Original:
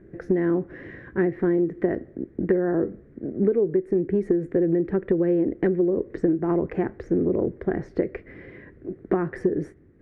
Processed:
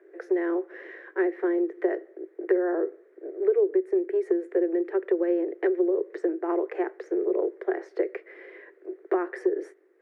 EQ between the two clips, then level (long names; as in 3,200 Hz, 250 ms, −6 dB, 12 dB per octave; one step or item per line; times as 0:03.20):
Butterworth high-pass 350 Hz 72 dB per octave
0.0 dB